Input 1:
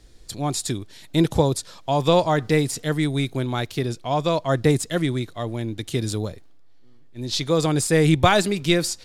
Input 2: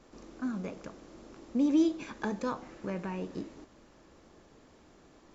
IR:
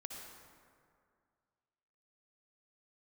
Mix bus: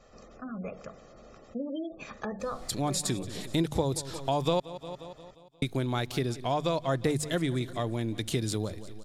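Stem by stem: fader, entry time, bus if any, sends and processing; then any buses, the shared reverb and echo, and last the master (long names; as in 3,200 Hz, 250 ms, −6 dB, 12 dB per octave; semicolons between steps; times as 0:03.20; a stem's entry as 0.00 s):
+3.0 dB, 2.40 s, muted 0:04.60–0:05.62, no send, echo send −19.5 dB, mains-hum notches 50/100/150 Hz
0.0 dB, 0.00 s, no send, no echo send, mains-hum notches 50/100/150/200/250/300/350 Hz; gate on every frequency bin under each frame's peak −30 dB strong; comb filter 1.6 ms, depth 72%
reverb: not used
echo: repeating echo 177 ms, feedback 52%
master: downward compressor 2.5 to 1, threshold −30 dBFS, peak gain reduction 14.5 dB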